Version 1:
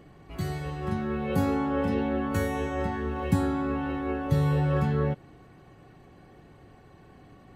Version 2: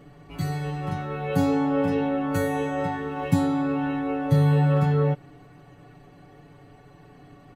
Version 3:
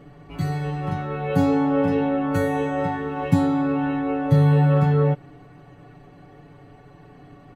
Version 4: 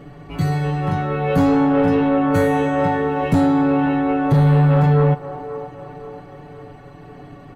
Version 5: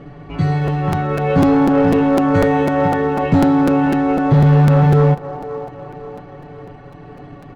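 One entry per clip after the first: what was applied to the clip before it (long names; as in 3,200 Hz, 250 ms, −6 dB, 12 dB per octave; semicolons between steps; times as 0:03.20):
comb filter 6.9 ms, depth 88%
high-shelf EQ 4,200 Hz −7.5 dB; level +3 dB
soft clipping −16 dBFS, distortion −13 dB; delay with a band-pass on its return 528 ms, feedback 49%, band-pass 620 Hz, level −10 dB; level +6.5 dB
in parallel at −7.5 dB: floating-point word with a short mantissa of 2 bits; on the sum: high-frequency loss of the air 140 metres; regular buffer underruns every 0.25 s, samples 256, repeat, from 0:00.67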